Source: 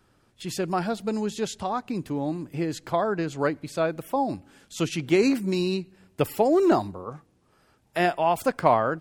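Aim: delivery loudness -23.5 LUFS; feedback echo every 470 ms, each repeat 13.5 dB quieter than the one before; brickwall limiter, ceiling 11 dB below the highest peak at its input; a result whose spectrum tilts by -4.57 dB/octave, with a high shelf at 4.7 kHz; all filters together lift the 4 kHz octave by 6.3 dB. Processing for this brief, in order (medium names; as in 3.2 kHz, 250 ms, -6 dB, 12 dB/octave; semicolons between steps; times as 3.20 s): peaking EQ 4 kHz +5.5 dB; treble shelf 4.7 kHz +4.5 dB; peak limiter -17 dBFS; feedback delay 470 ms, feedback 21%, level -13.5 dB; trim +5 dB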